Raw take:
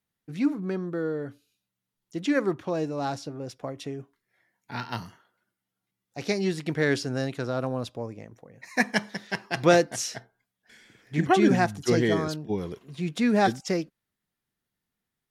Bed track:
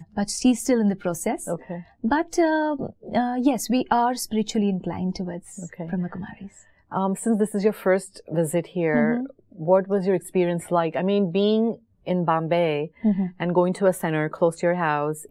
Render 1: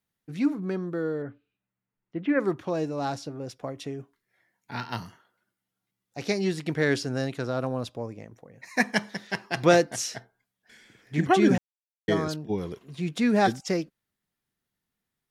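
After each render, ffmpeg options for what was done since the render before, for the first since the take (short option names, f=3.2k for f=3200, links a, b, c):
-filter_complex "[0:a]asettb=1/sr,asplit=3[a][b][c];[a]atrim=end=1.224[d];[b]atrim=start=1.22:end=2.4,asetpts=PTS-STARTPTS,afade=t=in:d=0.004:c=qsin,afade=t=out:st=1.176:d=0.004:c=qsin,lowpass=f=2.4k:w=0.5412,lowpass=f=2.4k:w=1.3066[e];[c]atrim=start=2.396[f];[d][e]acrossfade=d=0.004:c1=hsin:c2=qsin[g];[g][f]acrossfade=d=0.004:c1=qsin:c2=hsin,asplit=3[h][i][j];[h]atrim=end=11.58,asetpts=PTS-STARTPTS,afade=t=out:st=11.576:d=0.004:c=hsin[k];[i]atrim=start=11.58:end=12.08,asetpts=PTS-STARTPTS,volume=0[l];[j]atrim=start=12.08,asetpts=PTS-STARTPTS,afade=t=in:d=0.004:c=hsin[m];[k][l][m]concat=n=3:v=0:a=1"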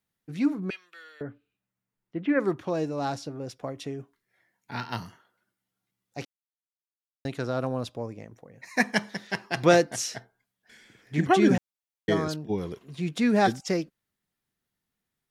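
-filter_complex "[0:a]asettb=1/sr,asplit=3[a][b][c];[a]atrim=end=0.704[d];[b]atrim=start=0.7:end=1.21,asetpts=PTS-STARTPTS,afade=t=in:d=0.004:c=qsin,afade=t=out:st=0.506:d=0.004:c=qsin,highpass=f=2.6k:t=q:w=5.7[e];[c]atrim=start=1.206[f];[d][e]acrossfade=d=0.004:c1=hsin:c2=qsin[g];[g][f]acrossfade=d=0.004:c1=qsin:c2=hsin,asplit=3[h][i][j];[h]atrim=end=6.25,asetpts=PTS-STARTPTS,afade=t=out:st=6.246:d=0.004:c=hsin[k];[i]atrim=start=6.25:end=7.25,asetpts=PTS-STARTPTS,volume=0[l];[j]atrim=start=7.25,asetpts=PTS-STARTPTS,afade=t=in:d=0.004:c=hsin[m];[k][l][m]concat=n=3:v=0:a=1"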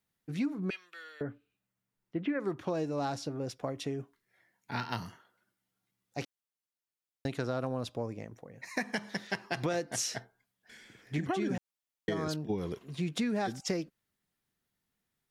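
-af "alimiter=limit=-16.5dB:level=0:latency=1:release=148,acompressor=threshold=-29dB:ratio=6"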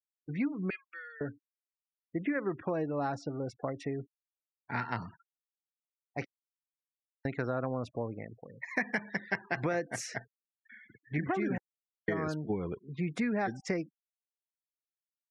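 -af "afftfilt=real='re*gte(hypot(re,im),0.00501)':imag='im*gte(hypot(re,im),0.00501)':win_size=1024:overlap=0.75,highshelf=f=2.6k:t=q:w=3:g=-6.5"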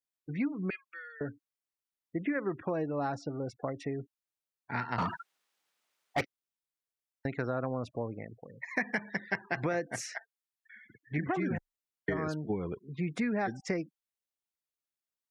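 -filter_complex "[0:a]asettb=1/sr,asplit=3[a][b][c];[a]atrim=end=4.984[d];[b]atrim=start=4.98:end=6.21,asetpts=PTS-STARTPTS,afade=t=in:d=0.004:c=qsin,afade=t=out:st=1.226:d=0.004:c=qsin,asplit=2[e][f];[f]highpass=f=720:p=1,volume=29dB,asoftclip=type=tanh:threshold=-19.5dB[g];[e][g]amix=inputs=2:normalize=0,lowpass=f=2.9k:p=1,volume=-6dB[h];[c]atrim=start=6.206[i];[d][h]acrossfade=d=0.004:c1=hsin:c2=qsin[j];[j][i]acrossfade=d=0.004:c1=qsin:c2=hsin,asettb=1/sr,asplit=3[k][l][m];[k]atrim=end=10.064[n];[l]atrim=start=10.06:end=10.76,asetpts=PTS-STARTPTS,afade=t=in:d=0.004:c=qsin,afade=t=out:st=0.696:d=0.004:c=qsin,highpass=f=760:w=0.5412,highpass=f=760:w=1.3066[o];[m]atrim=start=10.756[p];[n][o]acrossfade=d=0.004:c1=hsin:c2=qsin[q];[q][p]acrossfade=d=0.004:c1=qsin:c2=hsin,asettb=1/sr,asplit=3[r][s][t];[r]atrim=end=11.364[u];[s]atrim=start=11.36:end=12.18,asetpts=PTS-STARTPTS,afade=t=in:d=0.004:c=qsin,afade=t=out:st=0.816:d=0.004:c=qsin,afreqshift=-23[v];[t]atrim=start=12.176[w];[u][v]acrossfade=d=0.004:c1=hsin:c2=qsin[x];[x][w]acrossfade=d=0.004:c1=qsin:c2=hsin"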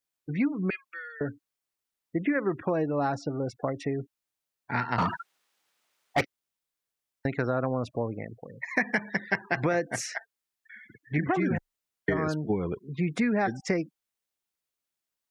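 -af "volume=5.5dB"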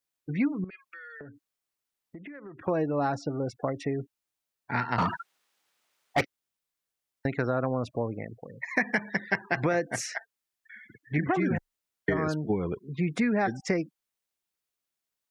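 -filter_complex "[0:a]asettb=1/sr,asplit=3[a][b][c];[a]atrim=end=0.644[d];[b]atrim=start=0.64:end=2.68,asetpts=PTS-STARTPTS,afade=t=in:d=0.004:c=qsin,afade=t=out:st=2.036:d=0.004:c=qsin,acompressor=threshold=-41dB:ratio=8:attack=3.2:release=140:knee=1:detection=peak[e];[c]atrim=start=2.676[f];[d][e]acrossfade=d=0.004:c1=hsin:c2=qsin[g];[g][f]acrossfade=d=0.004:c1=qsin:c2=hsin"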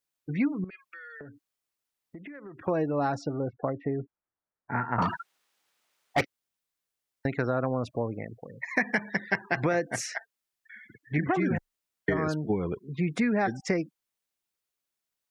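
-filter_complex "[0:a]asettb=1/sr,asplit=3[a][b][c];[a]atrim=end=3.334[d];[b]atrim=start=3.33:end=5.02,asetpts=PTS-STARTPTS,afade=t=in:d=0.004:c=qsin,afade=t=out:st=1.686:d=0.004:c=qsin,lowpass=f=1.7k:w=0.5412,lowpass=f=1.7k:w=1.3066[e];[c]atrim=start=5.016[f];[d][e]acrossfade=d=0.004:c1=hsin:c2=qsin[g];[g][f]acrossfade=d=0.004:c1=qsin:c2=hsin"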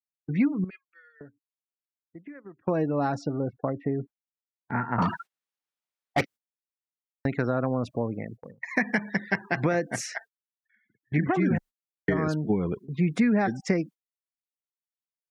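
-af "agate=range=-21dB:threshold=-43dB:ratio=16:detection=peak,equalizer=f=200:t=o:w=1.1:g=5"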